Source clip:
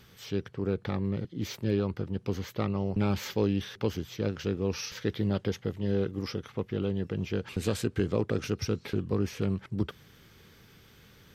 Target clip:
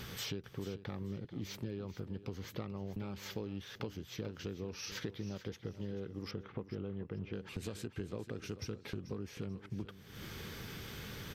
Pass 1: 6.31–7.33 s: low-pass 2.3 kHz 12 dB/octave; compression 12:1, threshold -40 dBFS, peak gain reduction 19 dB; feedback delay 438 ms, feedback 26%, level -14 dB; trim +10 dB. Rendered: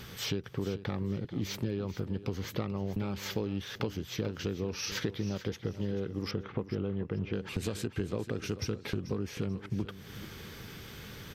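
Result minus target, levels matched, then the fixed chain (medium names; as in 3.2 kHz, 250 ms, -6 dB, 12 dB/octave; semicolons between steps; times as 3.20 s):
compression: peak gain reduction -8 dB
6.31–7.33 s: low-pass 2.3 kHz 12 dB/octave; compression 12:1, threshold -48.5 dBFS, peak gain reduction 26.5 dB; feedback delay 438 ms, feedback 26%, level -14 dB; trim +10 dB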